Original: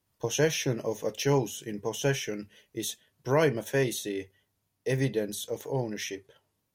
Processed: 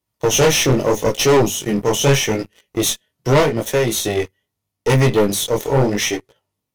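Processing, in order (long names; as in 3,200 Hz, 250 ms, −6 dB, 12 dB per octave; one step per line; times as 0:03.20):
0:03.40–0:04.17: downward compressor 6 to 1, threshold −29 dBFS, peak gain reduction 9.5 dB
harmonic generator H 6 −16 dB, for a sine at −12.5 dBFS
chorus effect 0.8 Hz, delay 16.5 ms, depth 7.8 ms
leveller curve on the samples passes 3
notch filter 1,600 Hz, Q 11
level +7.5 dB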